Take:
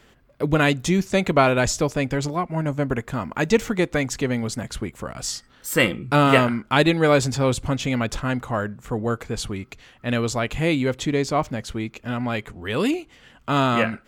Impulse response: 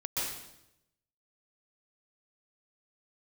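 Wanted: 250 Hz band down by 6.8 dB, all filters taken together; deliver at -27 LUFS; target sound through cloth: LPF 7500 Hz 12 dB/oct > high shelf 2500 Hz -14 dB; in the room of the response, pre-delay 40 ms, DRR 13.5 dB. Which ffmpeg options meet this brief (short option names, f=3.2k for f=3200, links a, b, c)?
-filter_complex "[0:a]equalizer=f=250:t=o:g=-9,asplit=2[a][b];[1:a]atrim=start_sample=2205,adelay=40[c];[b][c]afir=irnorm=-1:irlink=0,volume=-19dB[d];[a][d]amix=inputs=2:normalize=0,lowpass=7.5k,highshelf=f=2.5k:g=-14,volume=-0.5dB"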